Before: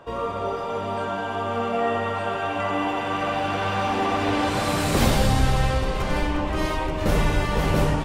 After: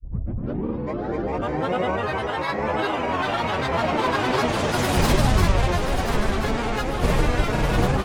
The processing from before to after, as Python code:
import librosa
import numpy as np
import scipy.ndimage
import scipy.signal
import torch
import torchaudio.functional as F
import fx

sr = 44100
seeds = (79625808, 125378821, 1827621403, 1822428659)

y = fx.tape_start_head(x, sr, length_s=2.03)
y = fx.granulator(y, sr, seeds[0], grain_ms=100.0, per_s=20.0, spray_ms=100.0, spread_st=7)
y = fx.echo_thinned(y, sr, ms=1035, feedback_pct=49, hz=420.0, wet_db=-9)
y = y * librosa.db_to_amplitude(2.0)